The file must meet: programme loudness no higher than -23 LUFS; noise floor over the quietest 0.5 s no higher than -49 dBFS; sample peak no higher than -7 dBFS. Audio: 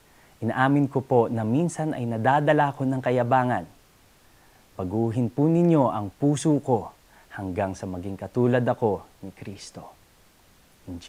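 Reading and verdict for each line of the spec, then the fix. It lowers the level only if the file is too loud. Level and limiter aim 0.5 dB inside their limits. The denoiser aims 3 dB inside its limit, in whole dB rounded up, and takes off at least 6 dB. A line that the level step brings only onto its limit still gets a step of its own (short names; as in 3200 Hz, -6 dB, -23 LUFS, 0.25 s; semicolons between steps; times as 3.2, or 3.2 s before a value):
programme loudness -24.0 LUFS: OK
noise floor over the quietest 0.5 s -57 dBFS: OK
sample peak -5.0 dBFS: fail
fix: limiter -7.5 dBFS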